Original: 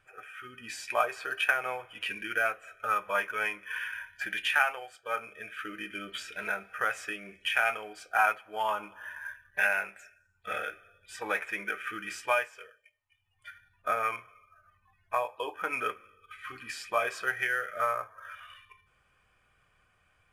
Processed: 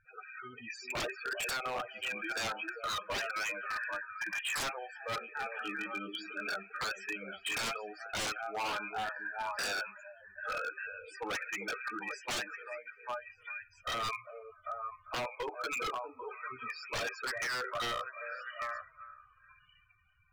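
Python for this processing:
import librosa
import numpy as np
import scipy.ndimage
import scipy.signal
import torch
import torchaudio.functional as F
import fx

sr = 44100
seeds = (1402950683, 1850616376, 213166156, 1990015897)

y = fx.cheby1_bandstop(x, sr, low_hz=370.0, high_hz=840.0, order=3, at=(3.28, 4.55))
y = fx.spec_topn(y, sr, count=16)
y = fx.echo_stepped(y, sr, ms=397, hz=340.0, octaves=1.4, feedback_pct=70, wet_db=-4)
y = 10.0 ** (-30.0 / 20.0) * (np.abs((y / 10.0 ** (-30.0 / 20.0) + 3.0) % 4.0 - 2.0) - 1.0)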